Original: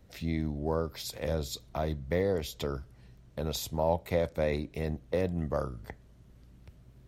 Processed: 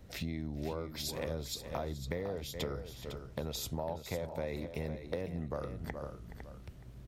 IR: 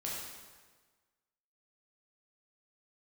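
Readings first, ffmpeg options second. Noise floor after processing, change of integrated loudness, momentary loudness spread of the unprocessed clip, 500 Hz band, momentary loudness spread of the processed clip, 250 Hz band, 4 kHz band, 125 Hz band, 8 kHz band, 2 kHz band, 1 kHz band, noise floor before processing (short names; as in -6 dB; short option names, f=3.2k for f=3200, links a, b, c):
-51 dBFS, -7.0 dB, 9 LU, -7.5 dB, 8 LU, -6.0 dB, -1.5 dB, -5.5 dB, -1.5 dB, -4.5 dB, -7.0 dB, -57 dBFS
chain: -filter_complex "[0:a]asplit=2[a][b];[b]aecho=0:1:422:0.158[c];[a][c]amix=inputs=2:normalize=0,acompressor=threshold=-39dB:ratio=6,asplit=2[d][e];[e]aecho=0:1:505:0.316[f];[d][f]amix=inputs=2:normalize=0,volume=4dB"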